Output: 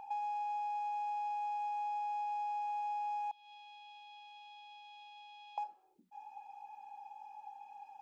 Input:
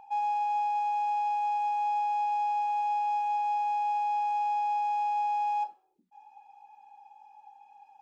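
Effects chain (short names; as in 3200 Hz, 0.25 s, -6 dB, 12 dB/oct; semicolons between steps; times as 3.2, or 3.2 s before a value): 3.31–5.58 band-pass 3500 Hz, Q 7.6; compressor 5:1, threshold -41 dBFS, peak gain reduction 12 dB; gain +2.5 dB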